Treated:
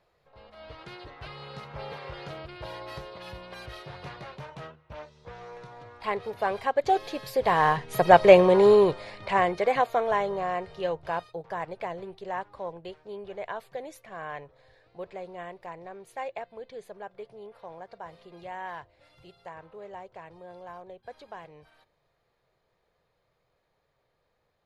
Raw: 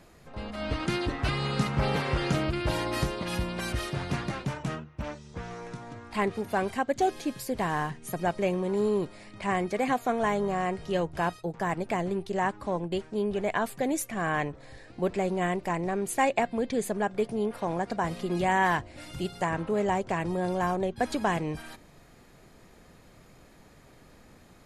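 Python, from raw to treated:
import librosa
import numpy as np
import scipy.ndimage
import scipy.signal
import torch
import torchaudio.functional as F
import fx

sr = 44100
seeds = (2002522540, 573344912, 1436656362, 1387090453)

y = fx.doppler_pass(x, sr, speed_mps=6, closest_m=2.4, pass_at_s=8.37)
y = fx.graphic_eq(y, sr, hz=(125, 250, 500, 1000, 2000, 4000, 8000), db=(4, -10, 10, 6, 3, 8, -8))
y = y * librosa.db_to_amplitude(7.5)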